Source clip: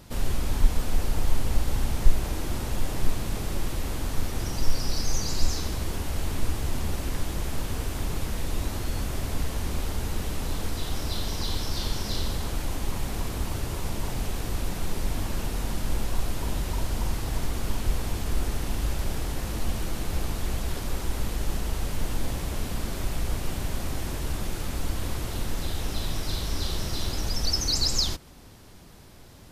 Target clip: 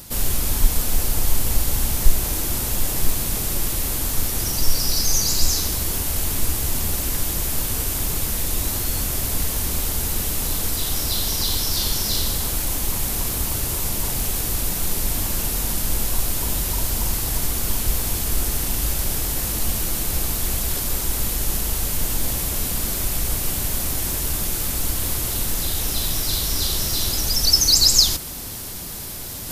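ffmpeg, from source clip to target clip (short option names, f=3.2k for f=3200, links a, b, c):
-af "aemphasis=mode=production:type=75fm,areverse,acompressor=mode=upward:threshold=-25dB:ratio=2.5,areverse,volume=3.5dB"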